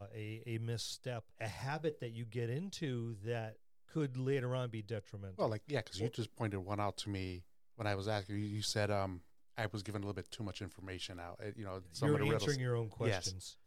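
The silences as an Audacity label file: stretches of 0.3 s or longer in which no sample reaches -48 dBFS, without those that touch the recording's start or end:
3.520000	3.930000	silence
7.400000	7.790000	silence
9.180000	9.570000	silence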